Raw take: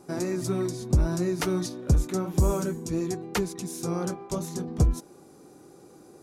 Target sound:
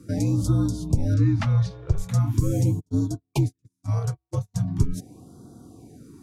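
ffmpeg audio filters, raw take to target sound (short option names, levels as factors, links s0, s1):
-filter_complex "[0:a]asettb=1/sr,asplit=3[s0][s1][s2];[s0]atrim=end=1.144[s3];[s1]atrim=start=1.14:end=1.98,asetpts=PTS-STARTPTS,afade=t=in:d=0.004:c=qsin,afade=t=out:st=0.836:d=0.004:c=qsin,lowpass=3600[s4];[s2]atrim=start=1.976[s5];[s3][s4]acrossfade=d=0.004:c1=hsin:c2=qsin[s6];[s6][s5]acrossfade=d=0.004:c1=qsin:c2=hsin,asplit=3[s7][s8][s9];[s7]afade=t=out:st=2.79:d=0.02[s10];[s8]agate=range=0.00398:threshold=0.0398:ratio=16:detection=peak,afade=t=in:st=2.79:d=0.02,afade=t=out:st=4.54:d=0.02[s11];[s9]afade=t=in:st=4.54:d=0.02[s12];[s10][s11][s12]amix=inputs=3:normalize=0,alimiter=limit=0.126:level=0:latency=1:release=100,afreqshift=-64,equalizer=f=130:w=0.85:g=11.5,afftfilt=real='re*(1-between(b*sr/1024,230*pow(2300/230,0.5+0.5*sin(2*PI*0.41*pts/sr))/1.41,230*pow(2300/230,0.5+0.5*sin(2*PI*0.41*pts/sr))*1.41))':imag='im*(1-between(b*sr/1024,230*pow(2300/230,0.5+0.5*sin(2*PI*0.41*pts/sr))/1.41,230*pow(2300/230,0.5+0.5*sin(2*PI*0.41*pts/sr))*1.41))':win_size=1024:overlap=0.75"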